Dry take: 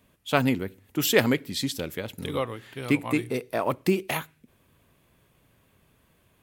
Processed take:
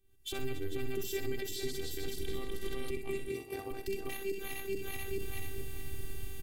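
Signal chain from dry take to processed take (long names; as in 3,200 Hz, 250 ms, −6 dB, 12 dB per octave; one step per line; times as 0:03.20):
feedback delay that plays each chunk backwards 216 ms, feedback 52%, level −6 dB
camcorder AGC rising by 57 dB per second
in parallel at −9 dB: dead-zone distortion −42.5 dBFS
on the sum: guitar amp tone stack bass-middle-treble 10-0-1
phases set to zero 390 Hz
on a send: repeating echo 63 ms, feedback 30%, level −9.5 dB
on the sum: de-essing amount 70%
brickwall limiter −31 dBFS, peak gain reduction 9 dB
0:03.28–0:03.71: high-pass filter 55 Hz
level +8 dB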